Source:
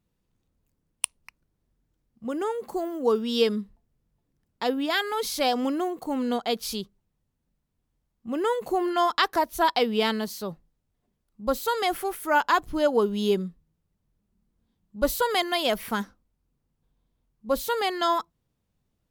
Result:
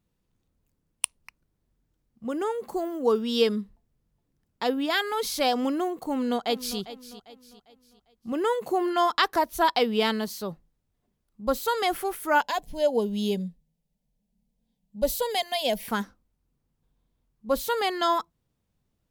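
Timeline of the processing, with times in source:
6.09–6.79 echo throw 0.4 s, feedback 40%, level -14.5 dB
8.32–9.14 HPF 76 Hz
12.41–15.88 fixed phaser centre 340 Hz, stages 6

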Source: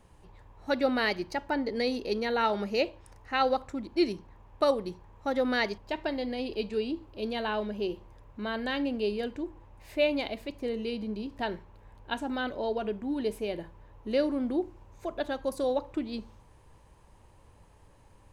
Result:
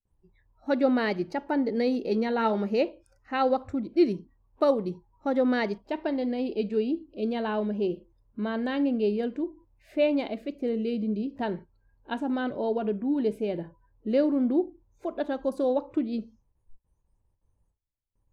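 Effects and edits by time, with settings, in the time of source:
2.02–2.74 doubler 18 ms -10 dB
whole clip: gate with hold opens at -47 dBFS; spectral noise reduction 25 dB; tilt -3 dB/oct

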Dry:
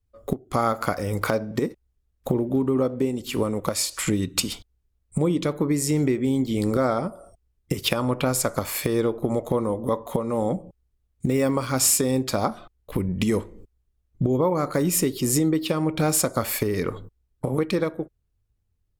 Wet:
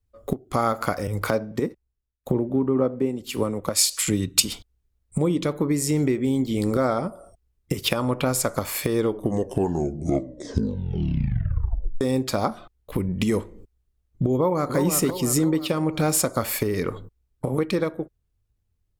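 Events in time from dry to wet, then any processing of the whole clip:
1.07–4.45 three-band expander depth 70%
8.98 tape stop 3.03 s
14.35–14.76 echo throw 0.34 s, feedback 50%, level -6 dB

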